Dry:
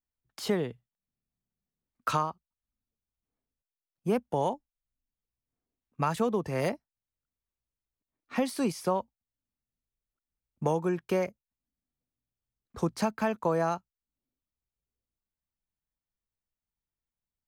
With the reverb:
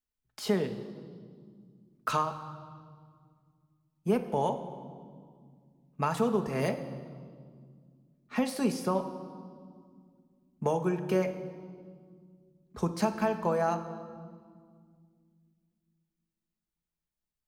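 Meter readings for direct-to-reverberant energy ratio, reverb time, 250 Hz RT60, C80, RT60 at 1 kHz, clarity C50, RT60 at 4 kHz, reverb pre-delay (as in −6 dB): 5.5 dB, 2.0 s, 3.1 s, 12.5 dB, 1.9 s, 11.0 dB, 1.6 s, 5 ms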